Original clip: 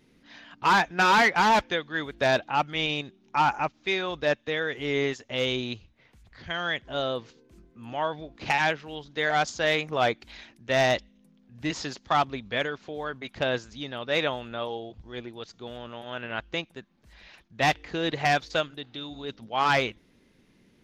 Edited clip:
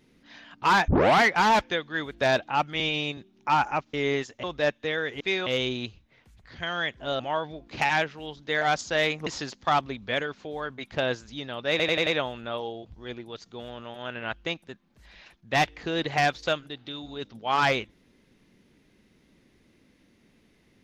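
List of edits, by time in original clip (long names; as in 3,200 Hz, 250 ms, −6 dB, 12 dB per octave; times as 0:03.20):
0:00.88: tape start 0.33 s
0:02.80–0:03.05: time-stretch 1.5×
0:03.81–0:04.07: swap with 0:04.84–0:05.34
0:07.07–0:07.88: remove
0:09.95–0:11.70: remove
0:14.14: stutter 0.09 s, 5 plays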